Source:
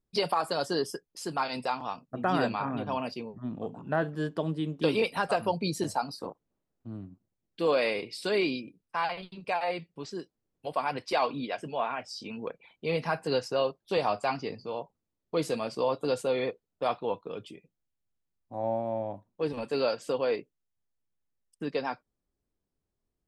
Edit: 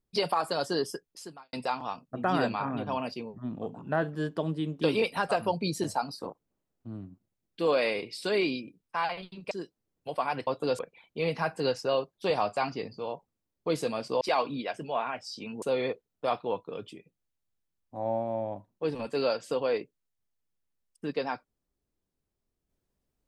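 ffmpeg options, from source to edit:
-filter_complex "[0:a]asplit=7[a][b][c][d][e][f][g];[a]atrim=end=1.53,asetpts=PTS-STARTPTS,afade=t=out:st=1.11:d=0.42:c=qua[h];[b]atrim=start=1.53:end=9.512,asetpts=PTS-STARTPTS,afade=t=in:d=0.004:c=hsin[i];[c]atrim=start=10.088:end=11.052[j];[d]atrim=start=15.878:end=16.202[k];[e]atrim=start=12.458:end=15.882[l];[f]atrim=start=11.048:end=12.462[m];[g]atrim=start=16.198[n];[h][i]concat=n=2:v=0:a=1[o];[o][j]acrossfade=d=0.004:c1=hsin:c2=hsin[p];[p][k]acrossfade=d=0.004:c1=hsin:c2=hsin[q];[q][l]acrossfade=d=0.004:c1=hsin:c2=hsin[r];[r][m]acrossfade=d=0.004:c1=hsin:c2=hsin[s];[s][n]acrossfade=d=0.004:c1=hsin:c2=hsin"

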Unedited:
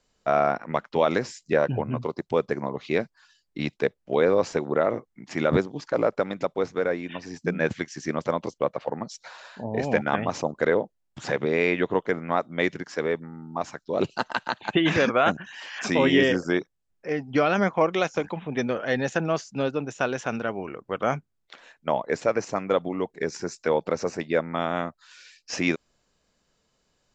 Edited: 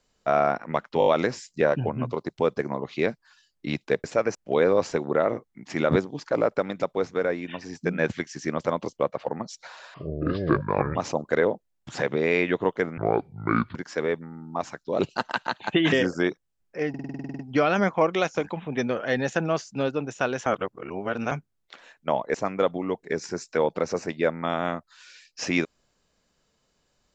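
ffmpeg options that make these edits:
-filter_complex "[0:a]asplit=25[a][b][c][d][e][f][g][h][i][j][k][l][m][n][o][p][q][r][s][t][u][v][w][x][y];[a]atrim=end=1.012[z];[b]atrim=start=0.988:end=1.012[aa];[c]atrim=start=0.988:end=1.012[ab];[d]atrim=start=0.988:end=1.012[ac];[e]atrim=start=0.988:end=3.962[ad];[f]atrim=start=22.138:end=22.452[ae];[g]atrim=start=3.958:end=9.554[af];[h]atrim=start=9.55:end=10.25,asetpts=PTS-STARTPTS,asetrate=30429,aresample=44100,atrim=end_sample=44739,asetpts=PTS-STARTPTS[ag];[i]atrim=start=10.246:end=12.274[ah];[j]atrim=start=12.27:end=12.76,asetpts=PTS-STARTPTS,asetrate=27783,aresample=44100[ai];[k]atrim=start=12.756:end=14.932[aj];[l]atrim=start=16.218:end=17.242[ak];[m]atrim=start=17.188:end=17.242[al];[n]atrim=start=17.188:end=17.242[am];[o]atrim=start=17.188:end=17.242[an];[p]atrim=start=17.188:end=17.242[ao];[q]atrim=start=17.188:end=17.242[ap];[r]atrim=start=17.188:end=17.242[aq];[s]atrim=start=17.188:end=17.242[ar];[t]atrim=start=17.188:end=17.242[as];[u]atrim=start=17.188:end=17.242[at];[v]atrim=start=17.188:end=20.262[au];[w]atrim=start=20.258:end=21.112,asetpts=PTS-STARTPTS,areverse[av];[x]atrim=start=21.108:end=22.142[aw];[y]atrim=start=22.448[ax];[z][aa]acrossfade=d=0.004:c1=hsin:c2=hsin[ay];[ay][ab]acrossfade=d=0.004:c1=hsin:c2=hsin[az];[az][ac]acrossfade=d=0.004:c1=hsin:c2=hsin[ba];[ba][ad]acrossfade=d=0.004:c1=hsin:c2=hsin[bb];[bb][ae]acrossfade=d=0.004:c1=hsin:c2=hsin[bc];[bc][af]acrossfade=d=0.004:c1=hsin:c2=hsin[bd];[bd][ag]acrossfade=d=0.004:c1=hsin:c2=hsin[be];[be][ah]acrossfade=d=0.004:c1=hsin:c2=hsin[bf];[bf][ai]acrossfade=d=0.004:c1=hsin:c2=hsin[bg];[bg][aj]acrossfade=d=0.004:c1=hsin:c2=hsin[bh];[bh][ak]acrossfade=d=0.004:c1=hsin:c2=hsin[bi];[bi][al]acrossfade=d=0.004:c1=hsin:c2=hsin[bj];[bj][am]acrossfade=d=0.004:c1=hsin:c2=hsin[bk];[bk][an]acrossfade=d=0.004:c1=hsin:c2=hsin[bl];[bl][ao]acrossfade=d=0.004:c1=hsin:c2=hsin[bm];[bm][ap]acrossfade=d=0.004:c1=hsin:c2=hsin[bn];[bn][aq]acrossfade=d=0.004:c1=hsin:c2=hsin[bo];[bo][ar]acrossfade=d=0.004:c1=hsin:c2=hsin[bp];[bp][as]acrossfade=d=0.004:c1=hsin:c2=hsin[bq];[bq][at]acrossfade=d=0.004:c1=hsin:c2=hsin[br];[br][au]acrossfade=d=0.004:c1=hsin:c2=hsin[bs];[bs][av]acrossfade=d=0.004:c1=hsin:c2=hsin[bt];[bt][aw]acrossfade=d=0.004:c1=hsin:c2=hsin[bu];[bu][ax]acrossfade=d=0.004:c1=hsin:c2=hsin"

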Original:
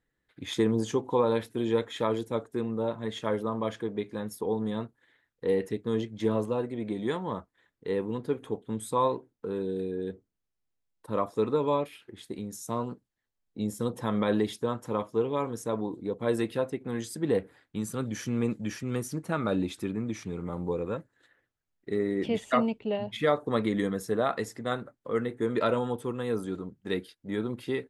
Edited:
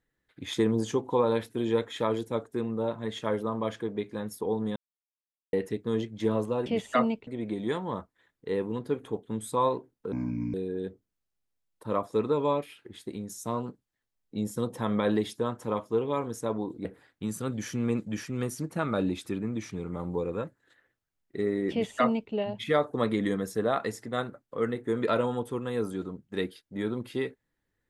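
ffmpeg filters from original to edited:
-filter_complex "[0:a]asplit=8[a][b][c][d][e][f][g][h];[a]atrim=end=4.76,asetpts=PTS-STARTPTS,afade=t=out:st=4.756:d=0.004:c=hsin[i];[b]atrim=start=4.76:end=5.53,asetpts=PTS-STARTPTS,volume=0[j];[c]atrim=start=5.53:end=6.662,asetpts=PTS-STARTPTS,afade=t=in:d=0.004:c=hsin[k];[d]atrim=start=22.238:end=22.852[l];[e]atrim=start=6.658:end=9.514[m];[f]atrim=start=9.51:end=9.77,asetpts=PTS-STARTPTS,asetrate=27342,aresample=44100[n];[g]atrim=start=9.766:end=16.082[o];[h]atrim=start=17.378[p];[i][j][k]concat=n=3:v=0:a=1[q];[q][l]acrossfade=d=0.004:c1=hsin:c2=hsin[r];[r][m]acrossfade=d=0.004:c1=hsin:c2=hsin[s];[s][n]acrossfade=d=0.004:c1=hsin:c2=hsin[t];[t][o]acrossfade=d=0.004:c1=hsin:c2=hsin[u];[u][p]acrossfade=d=0.004:c1=hsin:c2=hsin"

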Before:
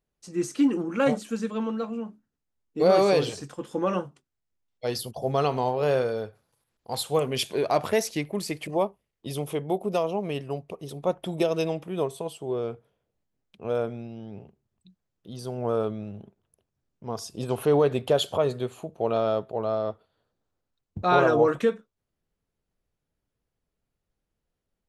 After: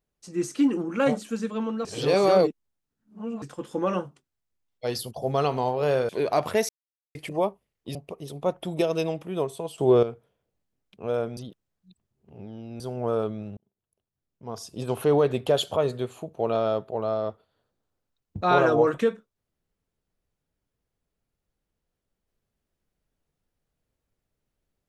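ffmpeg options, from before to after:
-filter_complex "[0:a]asplit=12[a][b][c][d][e][f][g][h][i][j][k][l];[a]atrim=end=1.852[m];[b]atrim=start=1.848:end=3.422,asetpts=PTS-STARTPTS,areverse[n];[c]atrim=start=3.418:end=6.092[o];[d]atrim=start=7.468:end=8.07,asetpts=PTS-STARTPTS,afade=t=out:st=0.598:d=0.004:c=hsin[p];[e]atrim=start=8.07:end=8.53,asetpts=PTS-STARTPTS,volume=0[q];[f]atrim=start=8.53:end=9.332,asetpts=PTS-STARTPTS,afade=t=in:d=0.004:c=hsin[r];[g]atrim=start=10.558:end=12.392[s];[h]atrim=start=12.388:end=12.642,asetpts=PTS-STARTPTS,volume=11dB[t];[i]atrim=start=12.638:end=13.982[u];[j]atrim=start=13.978:end=15.412,asetpts=PTS-STARTPTS,areverse[v];[k]atrim=start=15.408:end=16.18,asetpts=PTS-STARTPTS,afade=t=out:st=0.768:d=0.004:c=hsin[w];[l]atrim=start=16.18,asetpts=PTS-STARTPTS,afade=t=in:d=1.36[x];[m][n]acrossfade=d=0.004:c1=hsin:c2=hsin[y];[y][o]acrossfade=d=0.004:c1=hsin:c2=hsin[z];[p][q][r]concat=n=3:v=0:a=1[aa];[z][aa]acrossfade=d=0.004:c1=hsin:c2=hsin[ab];[ab][s]acrossfade=d=0.004:c1=hsin:c2=hsin[ac];[ac][t]acrossfade=d=0.004:c1=hsin:c2=hsin[ad];[ad][u]acrossfade=d=0.004:c1=hsin:c2=hsin[ae];[ae][v]acrossfade=d=0.004:c1=hsin:c2=hsin[af];[w][x]concat=n=2:v=0:a=1[ag];[af][ag]acrossfade=d=0.004:c1=hsin:c2=hsin"

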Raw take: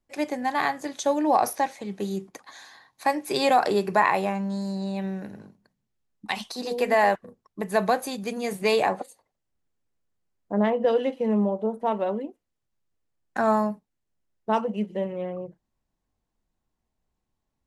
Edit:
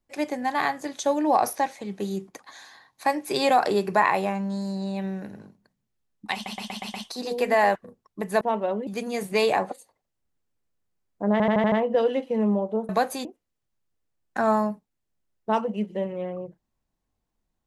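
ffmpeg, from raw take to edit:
-filter_complex "[0:a]asplit=15[a][b][c][d][e][f][g][h][i][j][k][l][m][n][o];[a]atrim=end=6.462[p];[b]atrim=start=6.338:end=6.462[q];[c]atrim=start=6.338:end=6.462[r];[d]atrim=start=6.338:end=6.462[s];[e]atrim=start=6.338:end=6.462[t];[f]atrim=start=6.338:end=7.812[u];[g]atrim=start=11.788:end=12.252[v];[h]atrim=start=8.168:end=10.702[w];[i]atrim=start=10.618:end=10.702[x];[j]atrim=start=10.618:end=10.702[y];[k]atrim=start=10.618:end=10.702[z];[l]atrim=start=10.618:end=10.702[aa];[m]atrim=start=10.618:end=11.792[ab];[n]atrim=start=7.808:end=8.172[ac];[o]atrim=start=12.248[ad];[p][q]acrossfade=d=0.004:c1=hsin:c2=hsin[ae];[ae][r]acrossfade=d=0.004:c1=hsin:c2=hsin[af];[af][s]acrossfade=d=0.004:c1=hsin:c2=hsin[ag];[ag][t]acrossfade=d=0.004:c1=hsin:c2=hsin[ah];[ah][u]acrossfade=d=0.004:c1=hsin:c2=hsin[ai];[ai][v]acrossfade=d=0.004:c1=hsin:c2=hsin[aj];[aj][w]acrossfade=d=0.004:c1=hsin:c2=hsin[ak];[ak][x]acrossfade=d=0.004:c1=hsin:c2=hsin[al];[al][y]acrossfade=d=0.004:c1=hsin:c2=hsin[am];[am][z]acrossfade=d=0.004:c1=hsin:c2=hsin[an];[an][aa]acrossfade=d=0.004:c1=hsin:c2=hsin[ao];[ao][ab]acrossfade=d=0.004:c1=hsin:c2=hsin[ap];[ap][ac]acrossfade=d=0.004:c1=hsin:c2=hsin[aq];[aq][ad]acrossfade=d=0.004:c1=hsin:c2=hsin"

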